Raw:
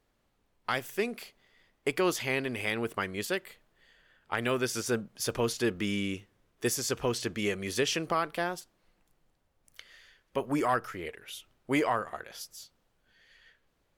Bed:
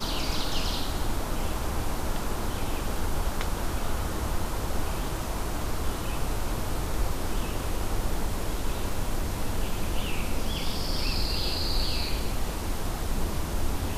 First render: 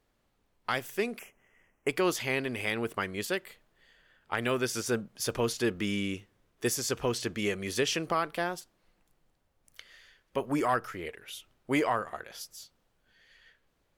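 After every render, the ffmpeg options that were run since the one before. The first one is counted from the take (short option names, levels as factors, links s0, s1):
-filter_complex "[0:a]asettb=1/sr,asplit=3[s0][s1][s2];[s0]atrim=end=1.194[s3];[s1]atrim=start=1.19:end=1.89,asetpts=PTS-STARTPTS,afade=t=in:d=0.004:c=qsin,afade=t=out:st=0.696:d=0.004:c=qsin,asuperstop=centerf=4100:order=8:qfactor=1.6[s4];[s2]atrim=start=1.886[s5];[s3][s4]acrossfade=d=0.004:c1=hsin:c2=qsin[s6];[s6][s5]acrossfade=d=0.004:c1=qsin:c2=hsin"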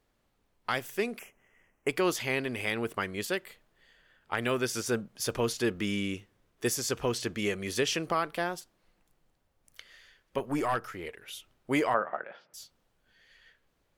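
-filter_complex "[0:a]asettb=1/sr,asplit=3[s0][s1][s2];[s0]atrim=end=10.384[s3];[s1]atrim=start=10.38:end=11.22,asetpts=PTS-STARTPTS,afade=t=in:d=0.004:c=qsin,afade=t=out:st=0.836:d=0.004:c=qsin,aeval=exprs='(tanh(7.94*val(0)+0.35)-tanh(0.35))/7.94':c=same[s4];[s2]atrim=start=11.216[s5];[s3][s4]acrossfade=d=0.004:c1=hsin:c2=qsin[s6];[s6][s5]acrossfade=d=0.004:c1=qsin:c2=hsin,asettb=1/sr,asplit=3[s7][s8][s9];[s7]atrim=end=11.944[s10];[s8]atrim=start=11.94:end=12.54,asetpts=PTS-STARTPTS,afade=t=in:d=0.004:c=qsin,afade=t=out:st=0.596:d=0.004:c=qsin,highpass=f=150:w=0.5412,highpass=f=150:w=1.3066,equalizer=f=590:t=q:w=4:g=8,equalizer=f=840:t=q:w=4:g=5,equalizer=f=1400:t=q:w=4:g=6,lowpass=f=2500:w=0.5412,lowpass=f=2500:w=1.3066[s11];[s9]atrim=start=12.536[s12];[s10][s11]acrossfade=d=0.004:c1=hsin:c2=qsin[s13];[s13][s12]acrossfade=d=0.004:c1=qsin:c2=hsin"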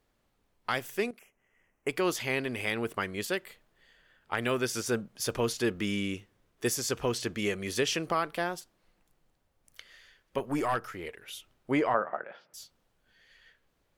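-filter_complex "[0:a]asettb=1/sr,asplit=3[s0][s1][s2];[s0]atrim=end=11.714[s3];[s1]atrim=start=11.71:end=12.29,asetpts=PTS-STARTPTS,afade=t=in:d=0.004:c=qsin,afade=t=out:st=0.576:d=0.004:c=qsin,aemphasis=mode=reproduction:type=75fm[s4];[s2]atrim=start=12.286[s5];[s3][s4]acrossfade=d=0.004:c1=hsin:c2=qsin[s6];[s6][s5]acrossfade=d=0.004:c1=qsin:c2=hsin,asplit=2[s7][s8];[s7]atrim=end=1.11,asetpts=PTS-STARTPTS,afade=t=out:st=1.106:d=0.004:c=hsin:silence=0.199526[s9];[s8]atrim=start=1.11,asetpts=PTS-STARTPTS,afade=t=in:d=1.45:c=qsin:silence=0.199526[s10];[s9][s10]concat=n=2:v=0:a=1"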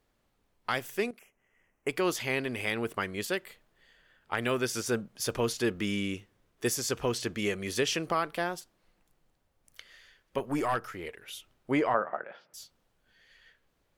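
-af anull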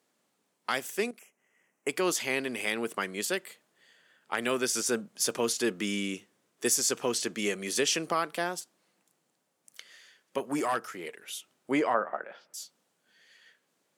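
-af "highpass=f=170:w=0.5412,highpass=f=170:w=1.3066,equalizer=f=8000:w=0.91:g=8.5"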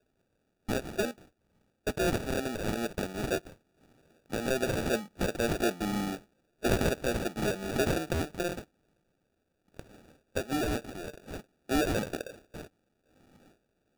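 -filter_complex "[0:a]acrossover=split=450|2500[s0][s1][s2];[s1]asoftclip=type=tanh:threshold=0.0596[s3];[s0][s3][s2]amix=inputs=3:normalize=0,acrusher=samples=42:mix=1:aa=0.000001"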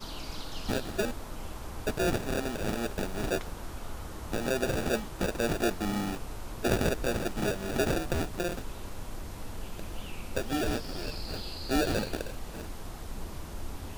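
-filter_complex "[1:a]volume=0.299[s0];[0:a][s0]amix=inputs=2:normalize=0"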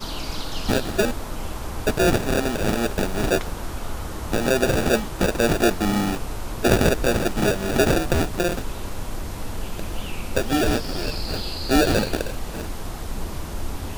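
-af "volume=2.99"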